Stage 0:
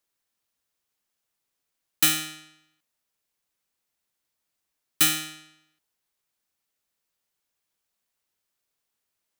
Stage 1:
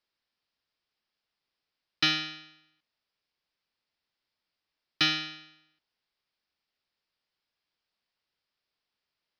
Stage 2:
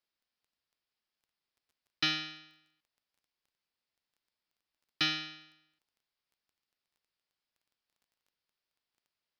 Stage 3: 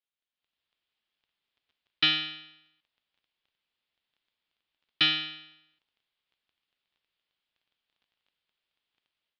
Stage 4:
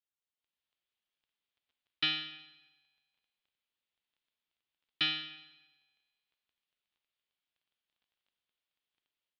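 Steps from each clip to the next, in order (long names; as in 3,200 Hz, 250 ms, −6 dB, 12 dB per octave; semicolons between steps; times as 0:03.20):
elliptic low-pass filter 5,100 Hz, stop band 40 dB; high-shelf EQ 4,000 Hz +5.5 dB; level −1 dB
surface crackle 11 per second −54 dBFS; level −5 dB
automatic gain control gain up to 11.5 dB; transistor ladder low-pass 3,900 Hz, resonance 50%
tuned comb filter 71 Hz, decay 1.6 s, harmonics all, mix 60%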